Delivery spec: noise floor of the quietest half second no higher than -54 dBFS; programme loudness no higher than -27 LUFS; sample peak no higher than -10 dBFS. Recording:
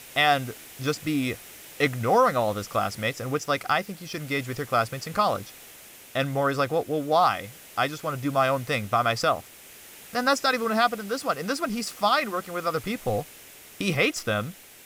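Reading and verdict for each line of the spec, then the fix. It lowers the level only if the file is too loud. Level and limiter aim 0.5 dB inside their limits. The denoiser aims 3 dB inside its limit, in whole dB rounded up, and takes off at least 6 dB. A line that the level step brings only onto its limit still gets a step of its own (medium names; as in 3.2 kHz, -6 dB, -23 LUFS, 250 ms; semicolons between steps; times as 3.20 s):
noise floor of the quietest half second -47 dBFS: fail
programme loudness -26.0 LUFS: fail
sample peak -8.5 dBFS: fail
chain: noise reduction 9 dB, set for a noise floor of -47 dBFS; trim -1.5 dB; peak limiter -10.5 dBFS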